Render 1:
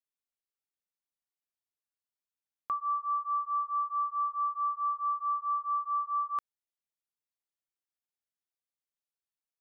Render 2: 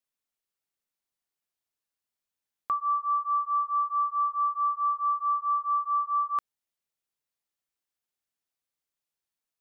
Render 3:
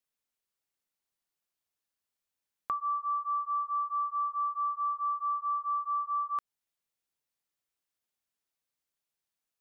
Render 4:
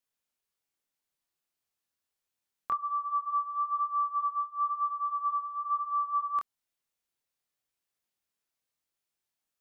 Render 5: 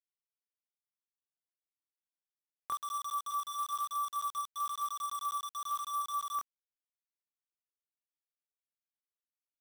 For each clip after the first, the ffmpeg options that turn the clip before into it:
-af "acontrast=62,volume=0.794"
-af "acompressor=threshold=0.0224:ratio=2"
-af "flanger=delay=22.5:depth=2.9:speed=1,volume=1.58"
-af "acrusher=bits=5:mix=0:aa=0.000001,volume=0.501"

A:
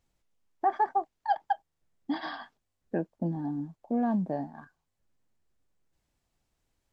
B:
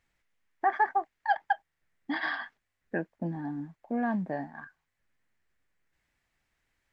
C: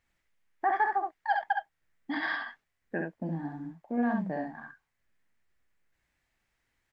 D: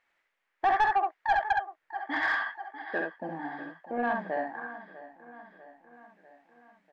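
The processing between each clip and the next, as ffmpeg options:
-af "equalizer=f=1900:w=1.2:g=15,volume=0.708"
-af "aecho=1:1:50|67:0.266|0.668,volume=0.794"
-filter_complex "[0:a]bass=f=250:g=-13,treble=f=4000:g=-5,aecho=1:1:646|1292|1938|2584|3230:0.15|0.0853|0.0486|0.0277|0.0158,asplit=2[s0][s1];[s1]highpass=f=720:p=1,volume=5.01,asoftclip=type=tanh:threshold=0.168[s2];[s0][s2]amix=inputs=2:normalize=0,lowpass=f=2100:p=1,volume=0.501"

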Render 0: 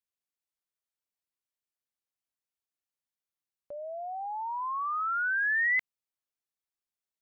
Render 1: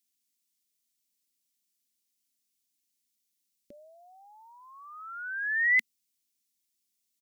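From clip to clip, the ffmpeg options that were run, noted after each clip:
-af "firequalizer=gain_entry='entry(140,0);entry(230,13);entry(670,-18);entry(1000,-20);entry(2000,4);entry(3700,10);entry(5700,14)':delay=0.05:min_phase=1"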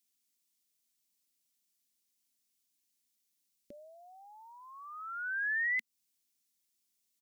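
-af "acompressor=threshold=0.0282:ratio=6"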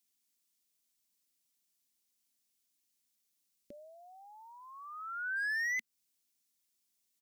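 -af "asoftclip=type=hard:threshold=0.0251"

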